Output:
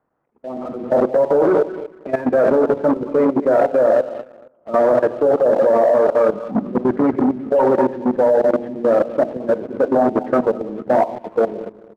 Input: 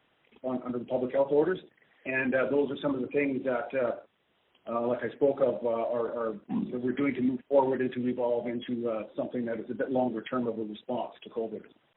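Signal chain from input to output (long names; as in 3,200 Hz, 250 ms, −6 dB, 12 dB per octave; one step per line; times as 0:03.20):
feedback delay that plays each chunk backwards 115 ms, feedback 59%, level −9 dB
mains-hum notches 60/120/180/240/300/360/420 Hz
on a send: repeating echo 91 ms, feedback 41%, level −18 dB
on the sum: automatic gain control gain up to 10 dB
dynamic equaliser 660 Hz, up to +7 dB, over −30 dBFS, Q 1.2
low-pass filter 1,300 Hz 24 dB per octave
leveller curve on the samples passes 1
output level in coarse steps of 15 dB
saturating transformer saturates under 540 Hz
level +2.5 dB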